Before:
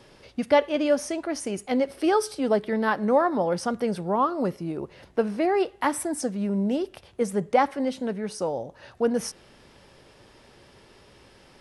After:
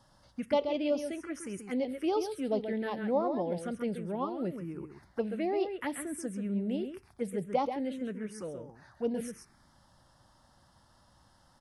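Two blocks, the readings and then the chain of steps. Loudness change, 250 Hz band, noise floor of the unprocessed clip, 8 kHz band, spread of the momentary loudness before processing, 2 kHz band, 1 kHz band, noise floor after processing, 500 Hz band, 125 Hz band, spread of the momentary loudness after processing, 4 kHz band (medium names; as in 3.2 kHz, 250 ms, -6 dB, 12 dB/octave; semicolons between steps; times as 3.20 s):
-8.5 dB, -7.0 dB, -55 dBFS, -11.0 dB, 9 LU, -12.0 dB, -11.0 dB, -65 dBFS, -8.0 dB, -7.0 dB, 11 LU, -9.0 dB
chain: echo from a far wall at 23 m, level -7 dB; touch-sensitive phaser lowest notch 400 Hz, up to 1.7 kHz, full sweep at -17.5 dBFS; trim -7 dB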